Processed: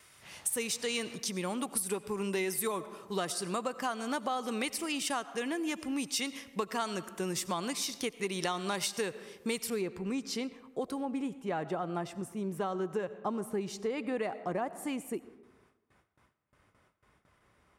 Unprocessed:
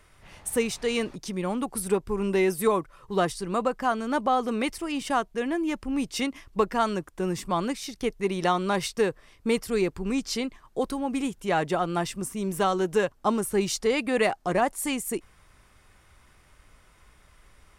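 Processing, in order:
high-shelf EQ 2,300 Hz +12 dB, from 0:09.70 −2 dB, from 0:11.05 −10.5 dB
noise gate with hold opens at −47 dBFS
high-pass filter 110 Hz 12 dB per octave
convolution reverb RT60 1.1 s, pre-delay 50 ms, DRR 17 dB
downward compressor 4 to 1, threshold −26 dBFS, peak gain reduction 9 dB
level −4.5 dB

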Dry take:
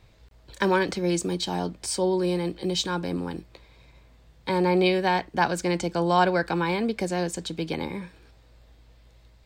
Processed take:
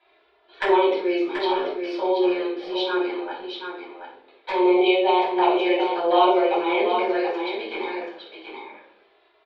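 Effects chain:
elliptic band-pass filter 400–3,500 Hz, stop band 40 dB
flanger swept by the level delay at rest 3 ms, full sweep at −24 dBFS
on a send: single-tap delay 732 ms −6.5 dB
on the sum: rectangular room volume 700 cubic metres, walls furnished, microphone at 8.1 metres
level −2.5 dB

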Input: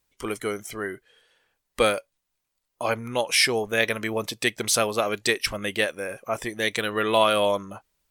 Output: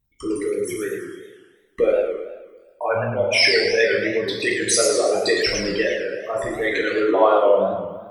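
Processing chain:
spectral envelope exaggerated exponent 3
coupled-rooms reverb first 0.61 s, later 1.7 s, from −16 dB, DRR −3 dB
feedback echo with a swinging delay time 111 ms, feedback 49%, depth 215 cents, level −6 dB

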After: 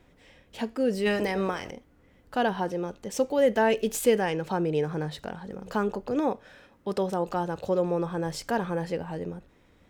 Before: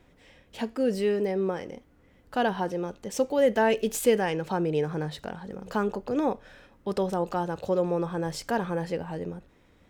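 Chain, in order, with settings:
0:01.05–0:01.70: ceiling on every frequency bin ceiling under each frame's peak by 18 dB
0:06.20–0:07.27: high-pass filter 97 Hz 6 dB per octave

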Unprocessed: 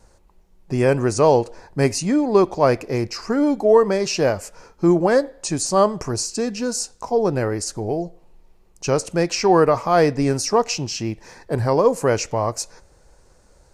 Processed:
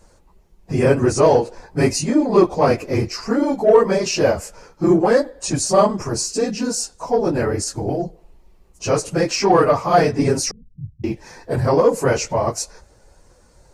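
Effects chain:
random phases in long frames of 50 ms
in parallel at −7 dB: soft clipping −14 dBFS, distortion −11 dB
0:10.51–0:11.04: on the sum: inverse Chebyshev low-pass filter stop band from 750 Hz, stop band 80 dB
level −1 dB

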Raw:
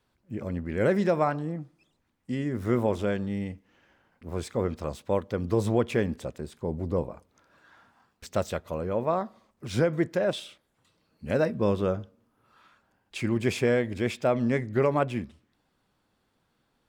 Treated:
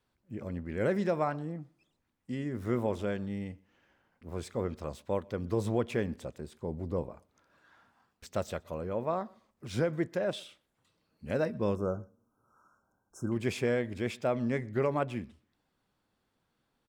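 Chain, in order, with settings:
0:11.75–0:13.32: linear-phase brick-wall band-stop 1,600–5,200 Hz
slap from a distant wall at 21 metres, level −27 dB
level −5.5 dB

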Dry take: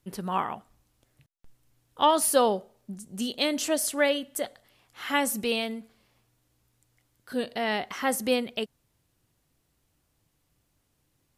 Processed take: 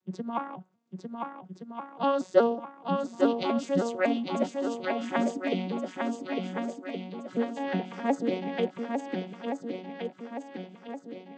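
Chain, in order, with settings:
vocoder with an arpeggio as carrier major triad, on F#3, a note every 184 ms
feedback echo with a long and a short gap by turns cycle 1,420 ms, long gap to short 1.5 to 1, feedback 47%, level −4 dB
harmonic and percussive parts rebalanced percussive +9 dB
level −3 dB

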